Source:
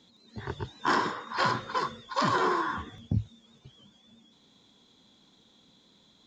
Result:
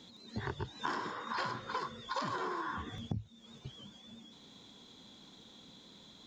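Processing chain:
downward compressor 8 to 1, threshold −40 dBFS, peak gain reduction 18 dB
level +5 dB

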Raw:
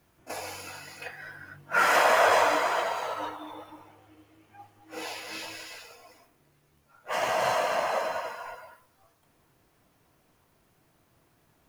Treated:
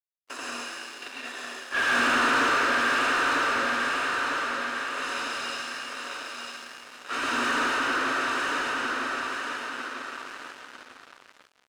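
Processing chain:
lower of the sound and its delayed copy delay 0.82 ms
high-shelf EQ 5,900 Hz +11.5 dB
repeating echo 949 ms, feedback 48%, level −4.5 dB
comb and all-pass reverb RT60 1.2 s, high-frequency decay 0.9×, pre-delay 60 ms, DRR −3.5 dB
frequency shifter +240 Hz
leveller curve on the samples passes 2
downsampling to 22,050 Hz
dead-zone distortion −38 dBFS
mid-hump overdrive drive 10 dB, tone 1,800 Hz, clips at −16 dBFS
low-shelf EQ 70 Hz −7 dB
level −5 dB

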